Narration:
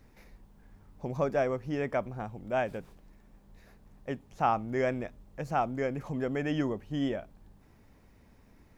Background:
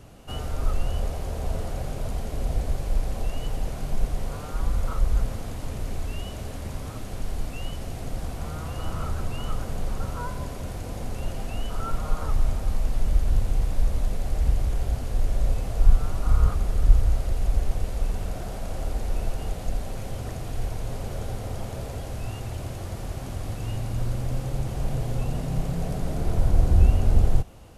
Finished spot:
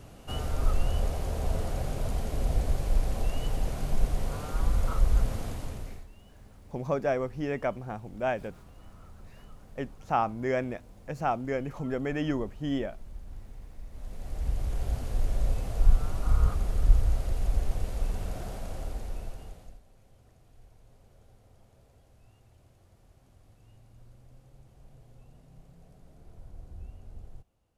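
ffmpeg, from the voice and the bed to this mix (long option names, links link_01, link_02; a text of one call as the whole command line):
ffmpeg -i stem1.wav -i stem2.wav -filter_complex "[0:a]adelay=5700,volume=0.5dB[link_01];[1:a]volume=17dB,afade=type=out:start_time=5.45:duration=0.61:silence=0.0891251,afade=type=in:start_time=13.89:duration=1.04:silence=0.125893,afade=type=out:start_time=18.46:duration=1.35:silence=0.0707946[link_02];[link_01][link_02]amix=inputs=2:normalize=0" out.wav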